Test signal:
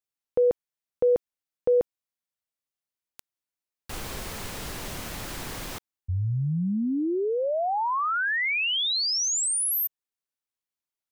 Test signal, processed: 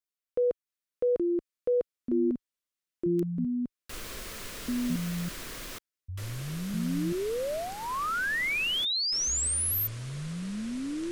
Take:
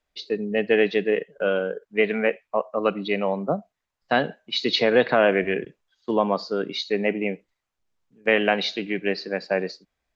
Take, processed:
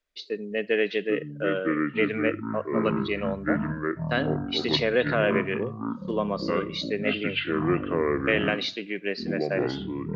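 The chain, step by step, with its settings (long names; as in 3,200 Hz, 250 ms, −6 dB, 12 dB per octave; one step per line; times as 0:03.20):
parametric band 110 Hz −8 dB 2.1 octaves
delay with pitch and tempo change per echo 668 ms, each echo −6 semitones, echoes 3
parametric band 820 Hz −12 dB 0.38 octaves
level −3 dB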